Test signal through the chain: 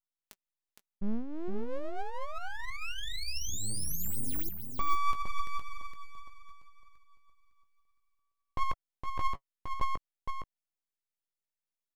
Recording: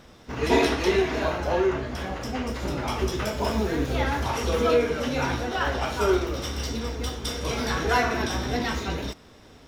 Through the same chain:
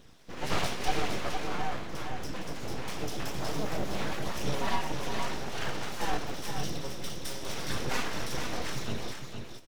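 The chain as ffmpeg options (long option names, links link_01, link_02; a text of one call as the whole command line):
ffmpeg -i in.wav -filter_complex "[0:a]equalizer=frequency=1000:width_type=o:width=2.3:gain=-5.5,asplit=2[link_01][link_02];[link_02]adelay=19,volume=-11dB[link_03];[link_01][link_03]amix=inputs=2:normalize=0,flanger=delay=0.3:depth=7.1:regen=52:speed=0.9:shape=sinusoidal,aeval=exprs='abs(val(0))':channel_layout=same,aecho=1:1:463:0.501" out.wav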